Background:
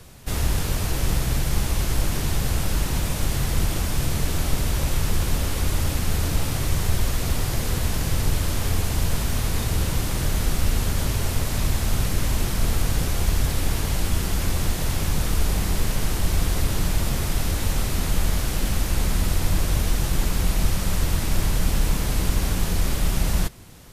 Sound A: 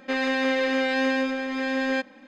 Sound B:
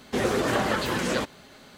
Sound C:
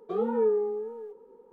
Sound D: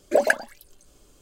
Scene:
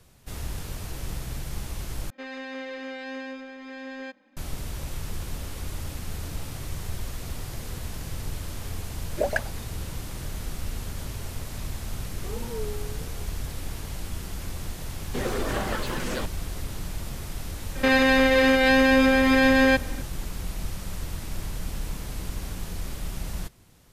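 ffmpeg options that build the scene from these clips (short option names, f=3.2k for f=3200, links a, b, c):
-filter_complex "[1:a]asplit=2[a][b];[0:a]volume=-11dB[c];[4:a]lowpass=7.1k[d];[b]alimiter=level_in=20dB:limit=-1dB:release=50:level=0:latency=1[e];[c]asplit=2[f][g];[f]atrim=end=2.104[h];[a]atrim=end=2.27,asetpts=PTS-STARTPTS,volume=-12.5dB[i];[g]atrim=start=4.366[j];[d]atrim=end=1.21,asetpts=PTS-STARTPTS,volume=-7dB,afade=t=in:d=0.004:c=hsin,afade=t=out:st=1.206:d=0.004:c=hsin,adelay=399546S[k];[3:a]atrim=end=1.52,asetpts=PTS-STARTPTS,volume=-11dB,afade=t=in:d=0.004:c=hsin,afade=t=out:st=1.516:d=0.004:c=hsin,adelay=12140[l];[2:a]atrim=end=1.77,asetpts=PTS-STARTPTS,volume=-5dB,afade=t=in:d=0.004:c=hsin,afade=t=out:st=1.766:d=0.004:c=hsin,adelay=15010[m];[e]atrim=end=2.27,asetpts=PTS-STARTPTS,volume=-10dB,afade=t=in:d=0.004:c=hsin,afade=t=out:st=2.266:d=0.004:c=hsin,adelay=17750[n];[h][i]acrossfade=d=0.004:c1=hsin:c2=hsin[o];[o][j]acrossfade=d=0.004:c1=hsin:c2=hsin[p];[p][k][l][m][n]amix=inputs=5:normalize=0"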